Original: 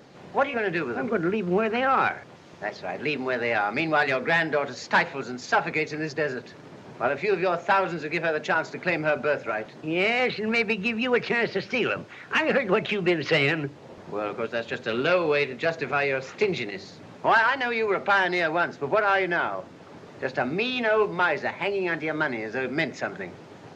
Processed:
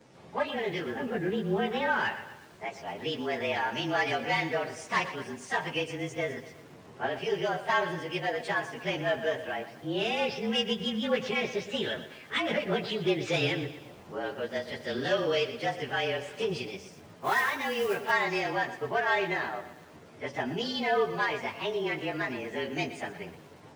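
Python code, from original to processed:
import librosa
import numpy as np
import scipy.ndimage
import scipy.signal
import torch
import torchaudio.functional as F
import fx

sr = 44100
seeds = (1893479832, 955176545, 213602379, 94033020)

y = fx.partial_stretch(x, sr, pct=109)
y = fx.mod_noise(y, sr, seeds[0], snr_db=20, at=(17.19, 18.1), fade=0.02)
y = fx.echo_crushed(y, sr, ms=120, feedback_pct=55, bits=8, wet_db=-13)
y = y * 10.0 ** (-3.0 / 20.0)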